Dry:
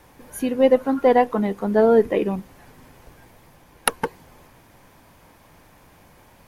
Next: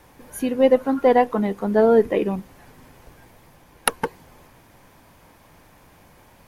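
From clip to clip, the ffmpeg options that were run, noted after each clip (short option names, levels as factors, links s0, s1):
-af anull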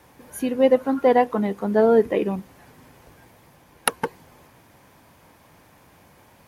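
-af "highpass=64,volume=0.891"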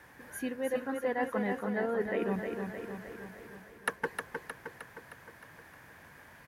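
-af "equalizer=f=1700:t=o:w=0.59:g=13.5,areverse,acompressor=threshold=0.0631:ratio=6,areverse,aecho=1:1:310|620|930|1240|1550|1860|2170|2480:0.531|0.308|0.179|0.104|0.0601|0.0348|0.0202|0.0117,volume=0.501"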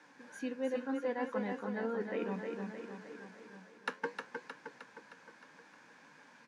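-af "flanger=delay=6.4:depth=6:regen=72:speed=0.65:shape=triangular,highpass=f=210:w=0.5412,highpass=f=210:w=1.3066,equalizer=f=380:t=q:w=4:g=-9,equalizer=f=670:t=q:w=4:g=-10,equalizer=f=1200:t=q:w=4:g=-5,equalizer=f=1900:t=q:w=4:g=-9,equalizer=f=3100:t=q:w=4:g=-4,lowpass=f=7000:w=0.5412,lowpass=f=7000:w=1.3066,volume=1.68"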